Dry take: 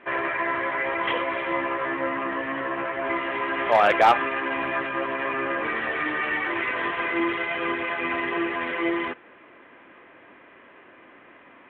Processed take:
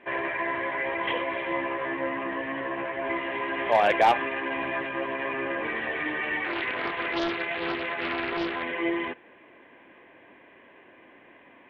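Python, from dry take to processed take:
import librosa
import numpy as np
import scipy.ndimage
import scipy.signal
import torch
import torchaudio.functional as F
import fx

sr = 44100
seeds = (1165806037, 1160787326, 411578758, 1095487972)

y = fx.peak_eq(x, sr, hz=1300.0, db=-14.5, octaves=0.21)
y = fx.doppler_dist(y, sr, depth_ms=0.58, at=(6.44, 8.63))
y = F.gain(torch.from_numpy(y), -2.0).numpy()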